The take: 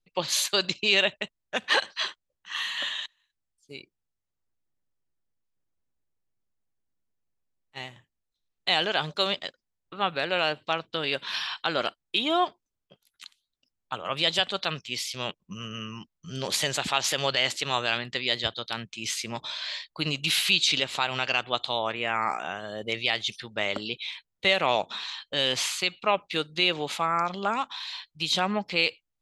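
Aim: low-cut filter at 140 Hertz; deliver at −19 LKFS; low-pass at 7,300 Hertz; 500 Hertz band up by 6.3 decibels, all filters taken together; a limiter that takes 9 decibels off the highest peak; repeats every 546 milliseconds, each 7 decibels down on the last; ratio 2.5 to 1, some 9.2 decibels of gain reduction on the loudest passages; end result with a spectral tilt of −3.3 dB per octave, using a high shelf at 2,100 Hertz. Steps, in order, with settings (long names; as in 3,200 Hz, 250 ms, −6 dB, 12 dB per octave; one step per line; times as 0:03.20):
high-pass filter 140 Hz
low-pass filter 7,300 Hz
parametric band 500 Hz +8.5 dB
high-shelf EQ 2,100 Hz −7 dB
downward compressor 2.5 to 1, threshold −30 dBFS
brickwall limiter −23 dBFS
repeating echo 546 ms, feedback 45%, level −7 dB
level +16 dB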